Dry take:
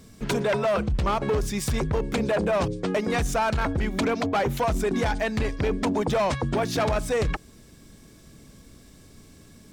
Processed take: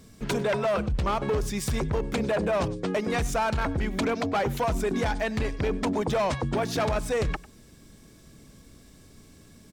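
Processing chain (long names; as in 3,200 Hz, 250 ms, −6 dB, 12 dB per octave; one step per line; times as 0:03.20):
slap from a distant wall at 17 metres, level −20 dB
level −2 dB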